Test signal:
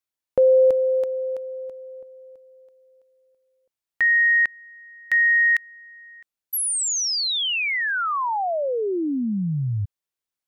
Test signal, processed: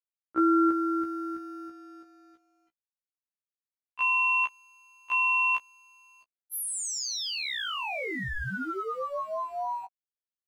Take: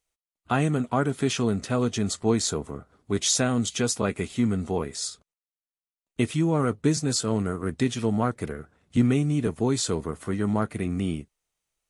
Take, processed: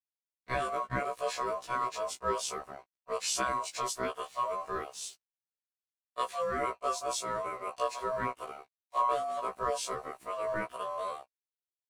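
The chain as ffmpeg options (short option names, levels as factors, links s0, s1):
-af "aeval=exprs='val(0)*sin(2*PI*850*n/s)':c=same,aeval=exprs='sgn(val(0))*max(abs(val(0))-0.00251,0)':c=same,afftfilt=real='re*1.73*eq(mod(b,3),0)':imag='im*1.73*eq(mod(b,3),0)':win_size=2048:overlap=0.75,volume=0.668"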